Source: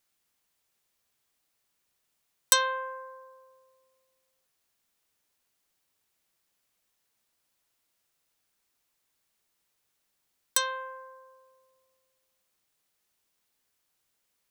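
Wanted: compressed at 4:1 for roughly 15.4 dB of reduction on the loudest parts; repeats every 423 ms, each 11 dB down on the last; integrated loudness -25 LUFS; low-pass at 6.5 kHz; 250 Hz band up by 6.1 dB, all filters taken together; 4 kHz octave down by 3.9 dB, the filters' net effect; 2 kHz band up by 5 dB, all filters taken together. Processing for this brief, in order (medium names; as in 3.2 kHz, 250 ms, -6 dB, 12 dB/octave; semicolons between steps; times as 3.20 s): low-pass 6.5 kHz; peaking EQ 250 Hz +8 dB; peaking EQ 2 kHz +8.5 dB; peaking EQ 4 kHz -7 dB; compression 4:1, threshold -37 dBFS; feedback delay 423 ms, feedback 28%, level -11 dB; trim +16.5 dB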